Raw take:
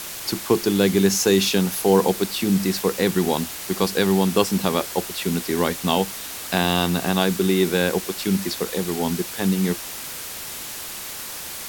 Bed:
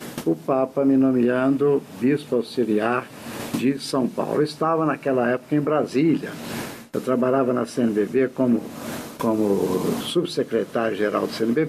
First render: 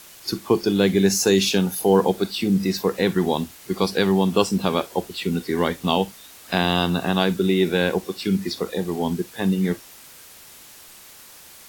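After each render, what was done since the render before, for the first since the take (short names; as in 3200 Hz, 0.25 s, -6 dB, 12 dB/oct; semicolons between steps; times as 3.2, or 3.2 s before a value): noise print and reduce 12 dB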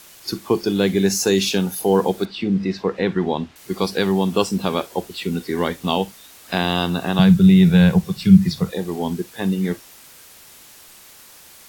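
2.25–3.56 LPF 3200 Hz; 7.19–8.71 resonant low shelf 220 Hz +11.5 dB, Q 3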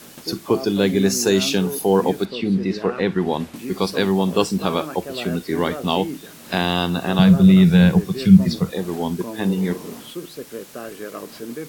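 add bed -11 dB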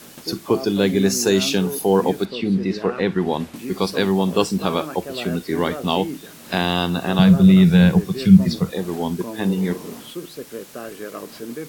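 nothing audible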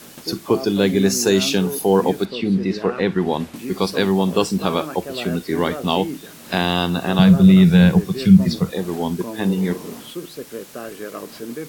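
gain +1 dB; limiter -2 dBFS, peak gain reduction 2 dB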